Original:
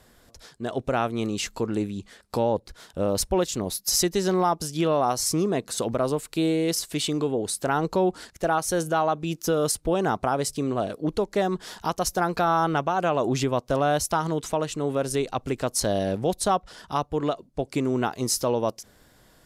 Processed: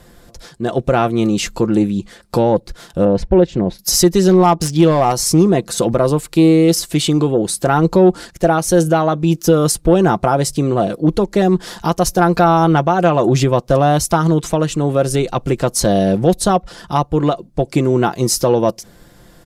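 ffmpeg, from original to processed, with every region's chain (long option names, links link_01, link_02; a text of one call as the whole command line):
ffmpeg -i in.wav -filter_complex "[0:a]asettb=1/sr,asplit=3[link_01][link_02][link_03];[link_01]atrim=end=3.054[link_04];[link_02]atrim=start=3.05:end=3.79,asetpts=PTS-STARTPTS,afade=type=in:duration=0.004:curve=qsin,afade=type=out:start_time=0.736:duration=0.004:curve=qsin,lowpass=2100,equalizer=frequency=1200:width_type=o:width=0.27:gain=-10.5[link_05];[link_03]atrim=start=3.786[link_06];[link_04][link_05]acrossfade=duration=0.004:curve1=hsin:curve2=qsin[link_07];[link_07][link_06]acrossfade=duration=0.004:curve1=qsin:curve2=hsin,asettb=1/sr,asplit=3[link_08][link_09][link_10];[link_08]atrim=end=4.334[link_11];[link_09]atrim=start=4.33:end=5.12,asetpts=PTS-STARTPTS,afade=type=in:duration=0.004:curve=qsin,afade=type=out:start_time=0.786:duration=0.004:curve=qsin,highshelf=frequency=6000:gain=11,adynamicsmooth=sensitivity=3.5:basefreq=3300,aeval=exprs='clip(val(0),-1,0.141)':channel_layout=same[link_12];[link_10]atrim=start=5.116[link_13];[link_11][link_12]acrossfade=duration=0.004:curve1=hsin:curve2=qsin[link_14];[link_14][link_13]acrossfade=duration=0.004:curve1=qsin:curve2=hsin,lowshelf=frequency=480:gain=6.5,aecho=1:1:5.8:0.44,acontrast=41,volume=1.5dB" out.wav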